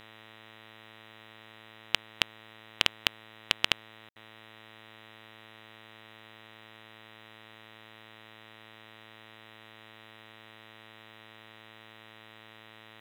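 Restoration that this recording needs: de-hum 109.9 Hz, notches 36; band-stop 1.9 kHz, Q 30; room tone fill 4.09–4.16 s; expander -45 dBFS, range -21 dB

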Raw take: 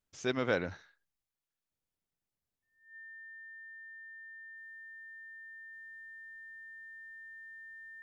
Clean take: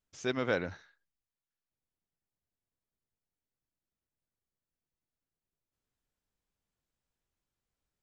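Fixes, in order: band-stop 1.8 kHz, Q 30; gain correction -7 dB, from 4.57 s

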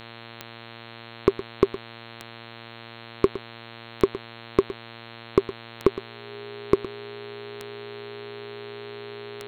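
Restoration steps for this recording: de-click; de-hum 115.7 Hz, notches 37; band-stop 410 Hz, Q 30; inverse comb 113 ms -15 dB

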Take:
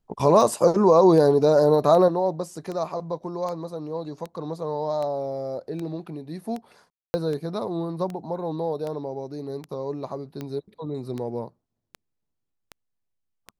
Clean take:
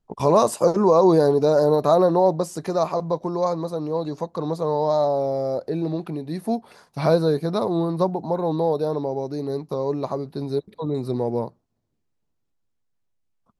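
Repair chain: de-click; room tone fill 6.90–7.14 s; trim 0 dB, from 2.08 s +6 dB

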